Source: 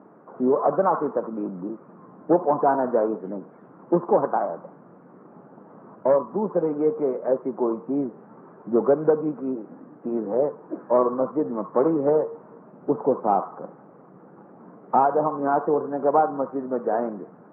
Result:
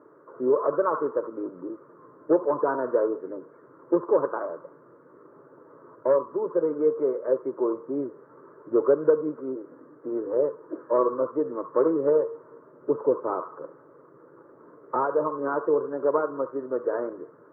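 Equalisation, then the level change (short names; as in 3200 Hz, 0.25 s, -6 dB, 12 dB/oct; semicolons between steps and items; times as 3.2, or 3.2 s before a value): fixed phaser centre 760 Hz, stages 6; 0.0 dB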